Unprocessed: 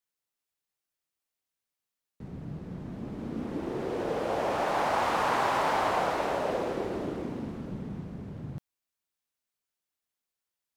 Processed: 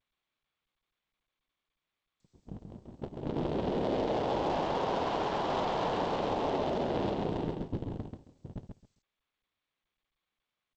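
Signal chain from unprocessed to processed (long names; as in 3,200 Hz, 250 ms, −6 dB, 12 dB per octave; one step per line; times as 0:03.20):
sub-harmonics by changed cycles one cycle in 3, inverted
downward compressor 6 to 1, threshold −29 dBFS, peak gain reduction 6.5 dB
flat-topped bell 1,700 Hz −10.5 dB 1.3 octaves
noise gate −35 dBFS, range −52 dB
brickwall limiter −30.5 dBFS, peak gain reduction 8.5 dB
harmonic generator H 6 −25 dB, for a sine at −30 dBFS
repeating echo 135 ms, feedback 18%, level −5 dB
low-pass that shuts in the quiet parts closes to 2,100 Hz, open at −23 dBFS
level +6.5 dB
G.722 64 kbit/s 16,000 Hz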